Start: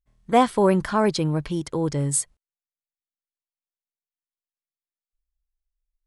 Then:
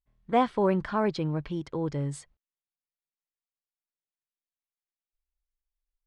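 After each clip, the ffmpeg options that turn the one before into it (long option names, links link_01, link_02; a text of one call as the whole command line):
ffmpeg -i in.wav -af "lowpass=3600,volume=-6dB" out.wav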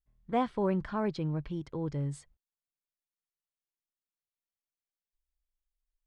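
ffmpeg -i in.wav -af "lowshelf=frequency=190:gain=8,volume=-7dB" out.wav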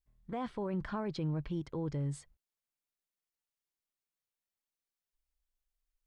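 ffmpeg -i in.wav -af "alimiter=level_in=4dB:limit=-24dB:level=0:latency=1:release=21,volume=-4dB" out.wav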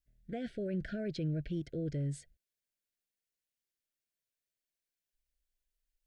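ffmpeg -i in.wav -af "asuperstop=centerf=1000:order=20:qfactor=1.4" out.wav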